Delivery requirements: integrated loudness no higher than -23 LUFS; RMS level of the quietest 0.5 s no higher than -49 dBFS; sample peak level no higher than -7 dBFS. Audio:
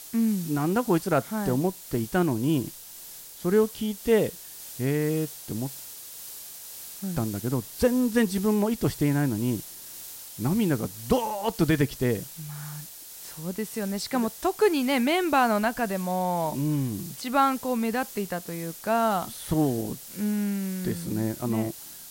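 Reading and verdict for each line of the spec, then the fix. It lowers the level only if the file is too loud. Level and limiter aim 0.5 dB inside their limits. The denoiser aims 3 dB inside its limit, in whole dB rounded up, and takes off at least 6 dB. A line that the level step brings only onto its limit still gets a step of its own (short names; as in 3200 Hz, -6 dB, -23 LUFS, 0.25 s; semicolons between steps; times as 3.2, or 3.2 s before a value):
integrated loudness -26.5 LUFS: OK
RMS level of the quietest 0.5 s -44 dBFS: fail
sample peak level -9.5 dBFS: OK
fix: denoiser 8 dB, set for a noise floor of -44 dBFS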